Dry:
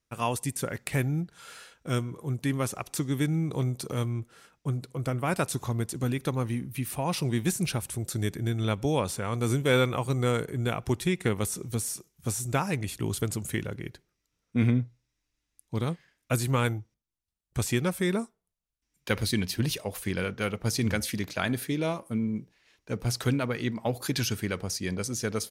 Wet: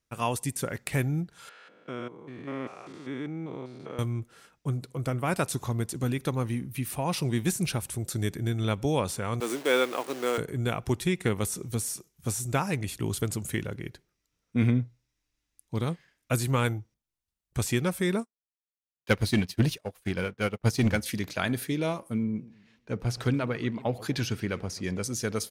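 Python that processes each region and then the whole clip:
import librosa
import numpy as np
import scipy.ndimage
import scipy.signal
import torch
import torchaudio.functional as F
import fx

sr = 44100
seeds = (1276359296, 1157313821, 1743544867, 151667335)

y = fx.chain(x, sr, fx.spec_steps(hold_ms=200),
    fx.bandpass_edges(low_hz=300.0, high_hz=2700.0), at=(1.49, 3.99))
y = fx.chain(y, sr, fx.delta_hold(step_db=-36.0),
    fx.highpass(hz=280.0, slope=24), at=(9.4, 10.38))
y = fx.chain(y, sr, fx.high_shelf(hz=5900.0, db=-4.0),
    fx.leveller(passes=2),
    fx.upward_expand(threshold_db=-37.0, expansion=2.5), at=(18.2, 21.06))
y = fx.chain(y, sr, fx.lowpass(hz=3200.0, slope=6),
    fx.echo_warbled(ms=131, feedback_pct=38, rate_hz=2.8, cents=189, wet_db=-19.0), at=(22.23, 25.03))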